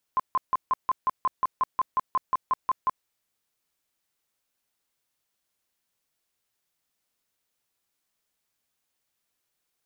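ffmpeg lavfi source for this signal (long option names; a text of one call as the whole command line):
ffmpeg -f lavfi -i "aevalsrc='0.112*sin(2*PI*1040*mod(t,0.18))*lt(mod(t,0.18),27/1040)':duration=2.88:sample_rate=44100" out.wav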